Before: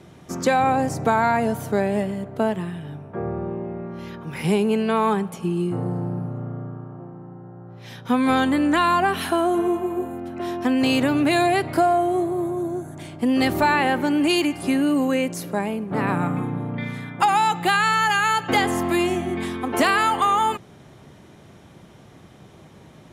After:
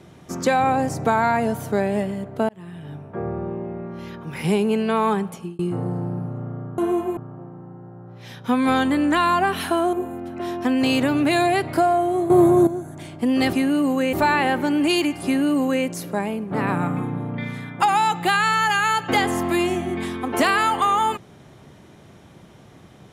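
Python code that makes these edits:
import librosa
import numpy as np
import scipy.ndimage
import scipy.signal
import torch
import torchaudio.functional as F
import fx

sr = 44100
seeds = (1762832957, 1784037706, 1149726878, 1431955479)

y = fx.edit(x, sr, fx.fade_in_span(start_s=2.49, length_s=0.45),
    fx.fade_out_span(start_s=5.31, length_s=0.28),
    fx.move(start_s=9.54, length_s=0.39, to_s=6.78),
    fx.clip_gain(start_s=12.3, length_s=0.37, db=11.0),
    fx.duplicate(start_s=14.65, length_s=0.6, to_s=13.53), tone=tone)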